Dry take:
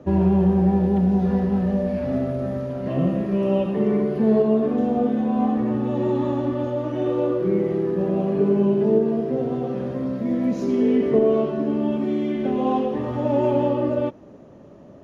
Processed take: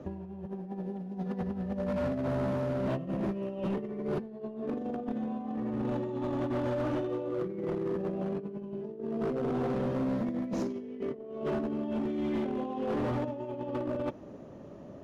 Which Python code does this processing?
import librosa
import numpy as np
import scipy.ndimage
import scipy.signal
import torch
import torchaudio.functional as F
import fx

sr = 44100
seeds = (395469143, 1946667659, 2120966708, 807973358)

y = fx.highpass(x, sr, hz=150.0, slope=24, at=(0.45, 1.41), fade=0.02)
y = fx.over_compress(y, sr, threshold_db=-25.0, ratio=-0.5)
y = np.clip(y, -10.0 ** (-21.5 / 20.0), 10.0 ** (-21.5 / 20.0))
y = F.gain(torch.from_numpy(y), -6.0).numpy()